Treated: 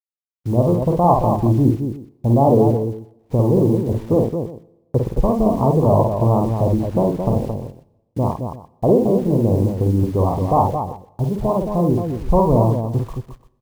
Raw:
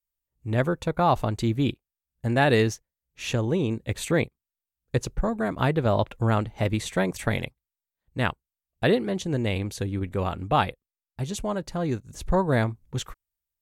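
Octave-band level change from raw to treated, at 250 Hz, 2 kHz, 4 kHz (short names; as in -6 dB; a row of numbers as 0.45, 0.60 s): +9.5 dB, under -15 dB, under -10 dB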